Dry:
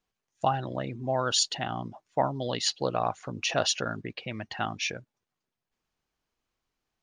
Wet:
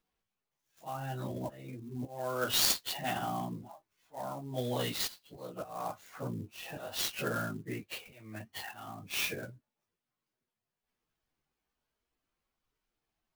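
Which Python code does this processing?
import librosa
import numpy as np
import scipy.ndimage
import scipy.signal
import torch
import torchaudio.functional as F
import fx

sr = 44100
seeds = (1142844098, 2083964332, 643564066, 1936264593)

y = fx.auto_swell(x, sr, attack_ms=240.0)
y = fx.stretch_vocoder_free(y, sr, factor=1.9)
y = fx.clock_jitter(y, sr, seeds[0], jitter_ms=0.029)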